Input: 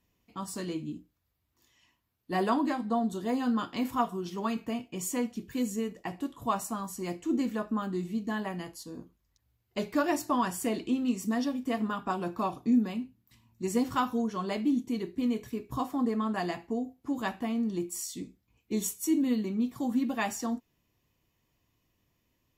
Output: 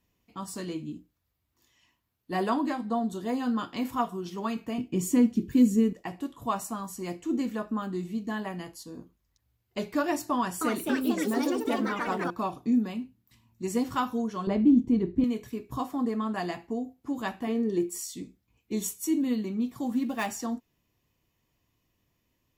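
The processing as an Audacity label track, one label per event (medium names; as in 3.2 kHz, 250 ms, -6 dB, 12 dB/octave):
4.780000	5.930000	resonant low shelf 460 Hz +9 dB, Q 1.5
10.330000	12.460000	ever faster or slower copies 282 ms, each echo +4 st, echoes 3
14.470000	15.240000	tilt EQ -4 dB/octave
17.470000	17.980000	small resonant body resonances 420/1800 Hz, height 16 dB
19.860000	20.270000	dead-time distortion of 0.051 ms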